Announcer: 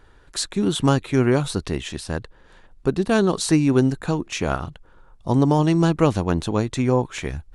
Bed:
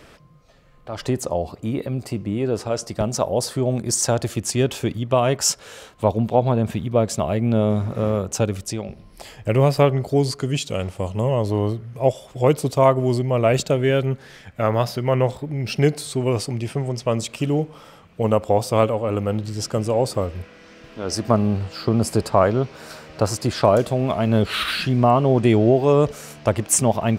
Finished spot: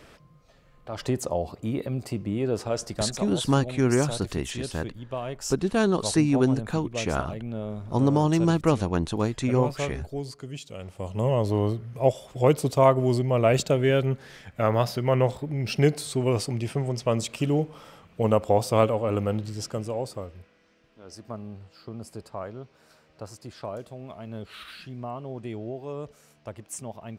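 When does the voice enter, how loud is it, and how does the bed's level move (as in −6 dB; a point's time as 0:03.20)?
2.65 s, −4.0 dB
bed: 0:02.93 −4 dB
0:03.31 −14.5 dB
0:10.76 −14.5 dB
0:11.26 −3 dB
0:19.23 −3 dB
0:20.86 −19.5 dB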